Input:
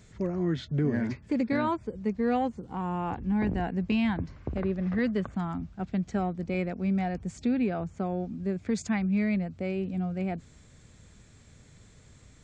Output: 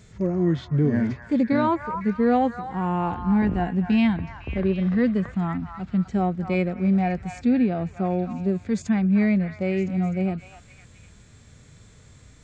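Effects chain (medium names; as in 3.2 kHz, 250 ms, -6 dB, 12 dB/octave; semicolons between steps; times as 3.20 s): harmonic-percussive split percussive -10 dB; repeats whose band climbs or falls 253 ms, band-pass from 1.2 kHz, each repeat 0.7 oct, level -5 dB; trim +7 dB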